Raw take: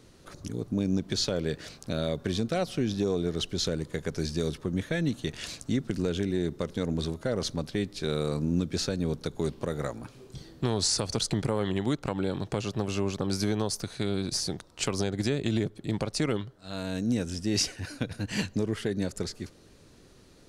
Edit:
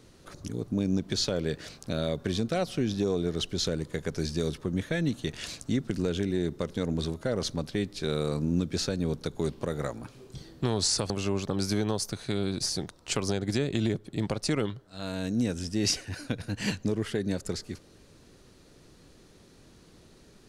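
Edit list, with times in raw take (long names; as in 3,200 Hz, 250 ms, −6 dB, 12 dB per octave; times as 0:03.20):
0:11.10–0:12.81: remove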